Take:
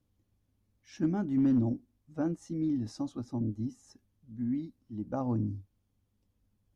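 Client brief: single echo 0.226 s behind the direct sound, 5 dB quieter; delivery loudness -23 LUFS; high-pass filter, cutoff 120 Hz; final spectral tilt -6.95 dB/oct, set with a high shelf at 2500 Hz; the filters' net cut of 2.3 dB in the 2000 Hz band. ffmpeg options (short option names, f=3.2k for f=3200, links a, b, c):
-af "highpass=120,equalizer=f=2k:t=o:g=-6.5,highshelf=f=2.5k:g=6.5,aecho=1:1:226:0.562,volume=9.5dB"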